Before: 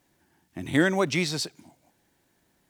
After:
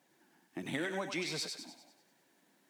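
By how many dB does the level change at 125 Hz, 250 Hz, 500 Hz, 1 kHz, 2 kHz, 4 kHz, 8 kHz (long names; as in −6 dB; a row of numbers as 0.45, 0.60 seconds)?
−16.0, −14.0, −12.5, −11.5, −11.0, −8.0, −8.5 decibels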